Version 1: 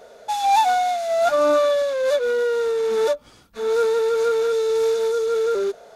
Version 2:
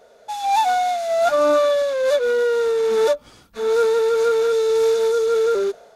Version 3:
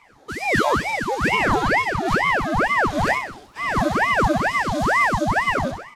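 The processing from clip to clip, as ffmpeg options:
ffmpeg -i in.wav -af "dynaudnorm=framelen=210:gausssize=5:maxgain=9dB,volume=-5.5dB" out.wav
ffmpeg -i in.wav -af "aecho=1:1:64|128|192|256|320|384|448:0.562|0.292|0.152|0.0791|0.0411|0.0214|0.0111,aeval=exprs='val(0)*sin(2*PI*880*n/s+880*0.85/2.2*sin(2*PI*2.2*n/s))':channel_layout=same" out.wav

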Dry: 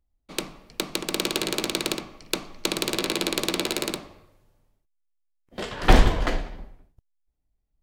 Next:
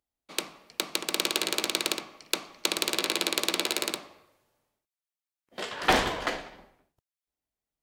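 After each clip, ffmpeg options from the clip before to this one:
ffmpeg -i in.wav -af "highpass=frequency=620:poles=1" out.wav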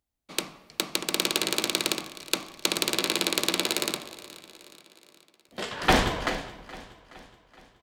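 ffmpeg -i in.wav -af "bass=frequency=250:gain=8,treble=frequency=4000:gain=1,aecho=1:1:422|844|1266|1688:0.126|0.0667|0.0354|0.0187,volume=1dB" out.wav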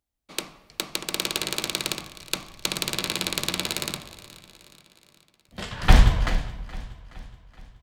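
ffmpeg -i in.wav -af "asubboost=boost=11:cutoff=110,volume=-1dB" out.wav

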